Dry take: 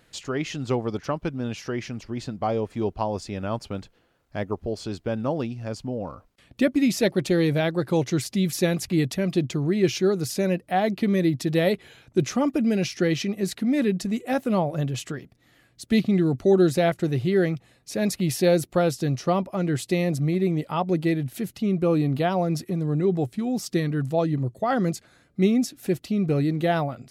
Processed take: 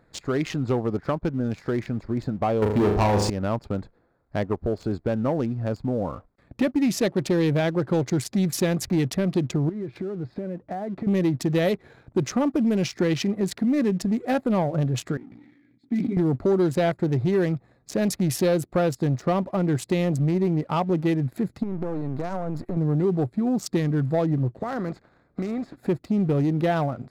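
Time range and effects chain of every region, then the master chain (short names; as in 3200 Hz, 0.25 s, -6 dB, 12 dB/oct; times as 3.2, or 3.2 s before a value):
2.62–3.3 sample leveller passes 3 + flutter echo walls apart 6.6 m, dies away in 0.56 s
9.69–11.07 LPF 3900 Hz 24 dB/oct + high shelf 2100 Hz -7 dB + compressor 16:1, threshold -33 dBFS
15.17–16.17 vowel filter i + doubler 17 ms -3.5 dB + sustainer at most 26 dB/s
21.63–22.77 half-wave gain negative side -12 dB + compressor 12:1, threshold -29 dBFS
24.55–25.75 spectral contrast lowered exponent 0.61 + compressor 12:1, threshold -30 dBFS + air absorption 100 m
whole clip: Wiener smoothing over 15 samples; compressor 2:1, threshold -29 dBFS; sample leveller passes 1; gain +3 dB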